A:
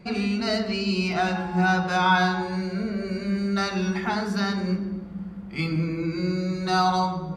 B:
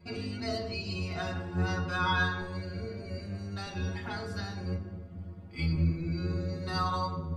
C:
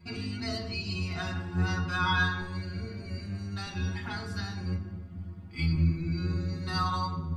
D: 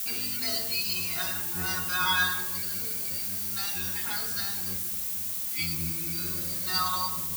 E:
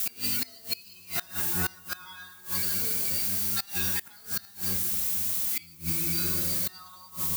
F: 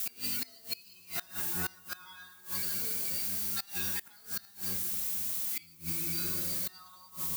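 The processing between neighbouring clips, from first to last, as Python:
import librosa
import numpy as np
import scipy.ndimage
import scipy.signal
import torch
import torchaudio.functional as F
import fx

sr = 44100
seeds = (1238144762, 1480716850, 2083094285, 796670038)

y1 = fx.octave_divider(x, sr, octaves=1, level_db=0.0)
y1 = fx.stiff_resonator(y1, sr, f0_hz=82.0, decay_s=0.34, stiffness=0.008)
y2 = fx.peak_eq(y1, sr, hz=530.0, db=-11.0, octaves=0.84)
y2 = y2 * librosa.db_to_amplitude(2.5)
y3 = fx.quant_dither(y2, sr, seeds[0], bits=8, dither='triangular')
y3 = fx.riaa(y3, sr, side='recording')
y4 = fx.gate_flip(y3, sr, shuts_db=-20.0, range_db=-24)
y4 = y4 * librosa.db_to_amplitude(4.0)
y5 = fx.highpass(y4, sr, hz=110.0, slope=6)
y5 = y5 * librosa.db_to_amplitude(-5.5)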